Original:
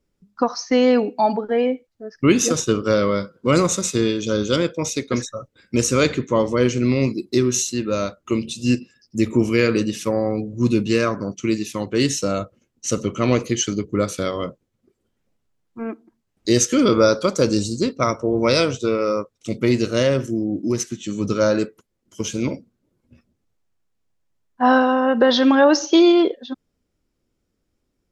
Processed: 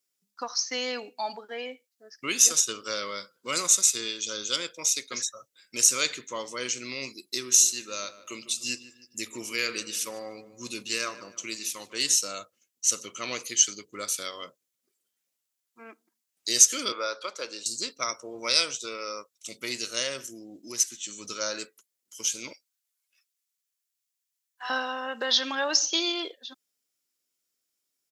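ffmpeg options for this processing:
ffmpeg -i in.wav -filter_complex "[0:a]asplit=3[link_01][link_02][link_03];[link_01]afade=type=out:start_time=7.5:duration=0.02[link_04];[link_02]asplit=2[link_05][link_06];[link_06]adelay=150,lowpass=frequency=2200:poles=1,volume=-14dB,asplit=2[link_07][link_08];[link_08]adelay=150,lowpass=frequency=2200:poles=1,volume=0.46,asplit=2[link_09][link_10];[link_10]adelay=150,lowpass=frequency=2200:poles=1,volume=0.46,asplit=2[link_11][link_12];[link_12]adelay=150,lowpass=frequency=2200:poles=1,volume=0.46[link_13];[link_05][link_07][link_09][link_11][link_13]amix=inputs=5:normalize=0,afade=type=in:start_time=7.5:duration=0.02,afade=type=out:start_time=12.14:duration=0.02[link_14];[link_03]afade=type=in:start_time=12.14:duration=0.02[link_15];[link_04][link_14][link_15]amix=inputs=3:normalize=0,asettb=1/sr,asplit=3[link_16][link_17][link_18];[link_16]atrim=end=16.924[link_19];[link_17]atrim=start=16.92:end=17.66,asetpts=PTS-STARTPTS,afade=type=in:duration=0.004:curve=qsin,afade=type=out:start_time=0.736:duration=0.004:curve=qsin,acrossover=split=340 3600:gain=0.141 1 0.0708[link_20][link_21][link_22];[link_20][link_21][link_22]amix=inputs=3:normalize=0[link_23];[link_18]atrim=start=17.656[link_24];[link_19][link_23]acrossfade=duration=0.004:curve1=hsin:curve2=qsin[link_25];[link_25][link_24]acrossfade=duration=0.004:curve1=qsin:curve2=hsin,asettb=1/sr,asplit=3[link_26][link_27][link_28];[link_26]atrim=end=22.534[link_29];[link_27]atrim=start=22.53:end=24.7,asetpts=PTS-STARTPTS,afade=type=in:duration=0.004:curve=qsin,afade=type=out:start_time=2.166:duration=0.004:curve=qsin,highpass=1400[link_30];[link_28]atrim=start=24.696[link_31];[link_29][link_30]acrossfade=duration=0.004:curve1=hsin:curve2=qsin[link_32];[link_32][link_31]acrossfade=duration=0.004:curve1=qsin:curve2=hsin,aderivative,volume=5dB" out.wav

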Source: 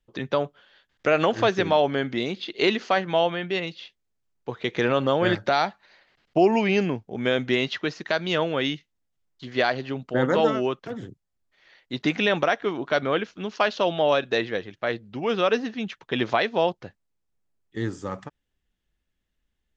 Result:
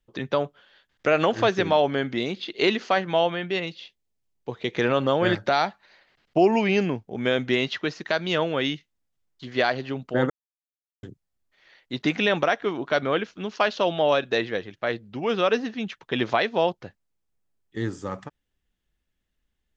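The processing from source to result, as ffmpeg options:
ffmpeg -i in.wav -filter_complex "[0:a]asettb=1/sr,asplit=3[link_01][link_02][link_03];[link_01]atrim=end=3.774[link_04];[link_02]atrim=start=3.77:end=4.73,asetpts=PTS-STARTPTS,afade=type=in:duration=0.004:curve=qsin,afade=type=out:start_time=0.956:duration=0.004:curve=qsin,equalizer=frequency=1400:width=1.5:gain=-6[link_05];[link_03]atrim=start=4.726[link_06];[link_04][link_05]acrossfade=duration=0.004:curve1=hsin:curve2=qsin[link_07];[link_07][link_06]acrossfade=duration=0.004:curve1=qsin:curve2=hsin,asplit=3[link_08][link_09][link_10];[link_08]atrim=end=10.3,asetpts=PTS-STARTPTS,afade=type=out:start_time=10.296:duration=0.004:curve=hsin[link_11];[link_09]atrim=start=10.3:end=11.03,asetpts=PTS-STARTPTS,volume=0[link_12];[link_10]atrim=start=11.03,asetpts=PTS-STARTPTS,afade=type=in:duration=0.004:curve=hsin[link_13];[link_11][link_12][link_13]concat=n=3:v=0:a=1" out.wav

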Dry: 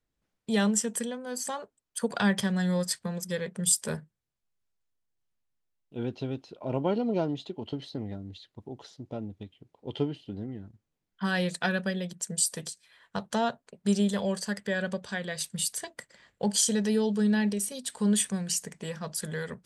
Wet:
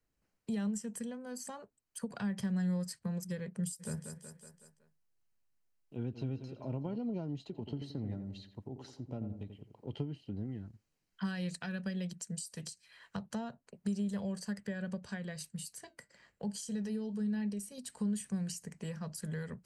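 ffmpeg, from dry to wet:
ffmpeg -i in.wav -filter_complex "[0:a]asplit=3[link_01][link_02][link_03];[link_01]afade=type=out:start_time=3.79:duration=0.02[link_04];[link_02]aecho=1:1:186|372|558|744|930:0.266|0.12|0.0539|0.0242|0.0109,afade=type=in:start_time=3.79:duration=0.02,afade=type=out:start_time=6.95:duration=0.02[link_05];[link_03]afade=type=in:start_time=6.95:duration=0.02[link_06];[link_04][link_05][link_06]amix=inputs=3:normalize=0,asplit=3[link_07][link_08][link_09];[link_07]afade=type=out:start_time=7.51:duration=0.02[link_10];[link_08]asplit=2[link_11][link_12];[link_12]adelay=87,lowpass=frequency=1500:poles=1,volume=-8dB,asplit=2[link_13][link_14];[link_14]adelay=87,lowpass=frequency=1500:poles=1,volume=0.4,asplit=2[link_15][link_16];[link_16]adelay=87,lowpass=frequency=1500:poles=1,volume=0.4,asplit=2[link_17][link_18];[link_18]adelay=87,lowpass=frequency=1500:poles=1,volume=0.4,asplit=2[link_19][link_20];[link_20]adelay=87,lowpass=frequency=1500:poles=1,volume=0.4[link_21];[link_11][link_13][link_15][link_17][link_19][link_21]amix=inputs=6:normalize=0,afade=type=in:start_time=7.51:duration=0.02,afade=type=out:start_time=9.93:duration=0.02[link_22];[link_09]afade=type=in:start_time=9.93:duration=0.02[link_23];[link_10][link_22][link_23]amix=inputs=3:normalize=0,asettb=1/sr,asplit=3[link_24][link_25][link_26];[link_24]atrim=end=10.454[link_27];[link_25]atrim=start=10.45:end=13.17,asetpts=PTS-STARTPTS,afade=type=in:duration=0.004:curve=qsin,afade=type=out:start_time=2.716:duration=0.004:curve=qsin,equalizer=frequency=4200:width_type=o:width=2.5:gain=6.5[link_28];[link_26]atrim=start=13.166[link_29];[link_27][link_28]acrossfade=duration=0.004:curve1=hsin:curve2=qsin[link_30];[link_30][link_29]acrossfade=duration=0.004:curve1=qsin:curve2=hsin,asettb=1/sr,asplit=3[link_31][link_32][link_33];[link_31]atrim=end=15.504[link_34];[link_32]atrim=start=15.5:end=17.78,asetpts=PTS-STARTPTS,afade=type=in:duration=0.004:curve=qsin,afade=type=out:start_time=2.276:duration=0.004:curve=qsin,flanger=delay=4.6:depth=2.9:regen=-74:speed=1:shape=sinusoidal[link_35];[link_33]atrim=start=17.776[link_36];[link_34][link_35]acrossfade=duration=0.004:curve1=hsin:curve2=qsin[link_37];[link_37][link_36]acrossfade=duration=0.004:curve1=qsin:curve2=hsin,acompressor=threshold=-27dB:ratio=6,bandreject=frequency=3500:width=5.7,acrossover=split=220[link_38][link_39];[link_39]acompressor=threshold=-52dB:ratio=2[link_40];[link_38][link_40]amix=inputs=2:normalize=0" out.wav

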